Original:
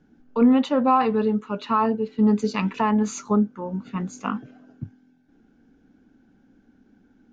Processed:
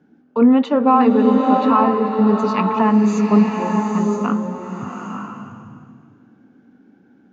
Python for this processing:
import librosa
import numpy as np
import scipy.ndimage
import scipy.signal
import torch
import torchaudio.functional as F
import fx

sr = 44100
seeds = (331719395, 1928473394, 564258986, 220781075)

y = scipy.signal.sosfilt(scipy.signal.butter(2, 160.0, 'highpass', fs=sr, output='sos'), x)
y = fx.high_shelf(y, sr, hz=3500.0, db=-11.0)
y = fx.rev_bloom(y, sr, seeds[0], attack_ms=920, drr_db=1.5)
y = y * librosa.db_to_amplitude(5.0)